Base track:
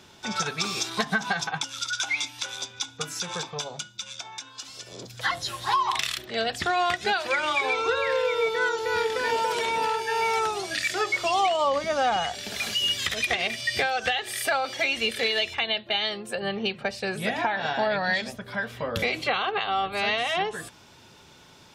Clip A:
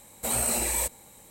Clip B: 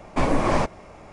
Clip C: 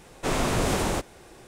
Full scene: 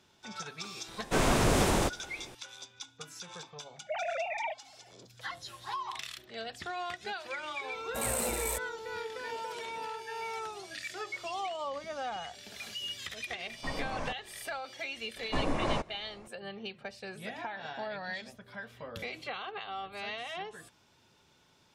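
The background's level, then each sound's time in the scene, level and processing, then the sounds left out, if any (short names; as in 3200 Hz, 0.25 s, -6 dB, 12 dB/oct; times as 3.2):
base track -13.5 dB
0.88 add C -1 dB
3.66 add A -7.5 dB + sine-wave speech
7.71 add A -4 dB + Wiener smoothing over 9 samples
13.47 add B -16.5 dB + notch 360 Hz, Q 5.7
15.16 add B -10 dB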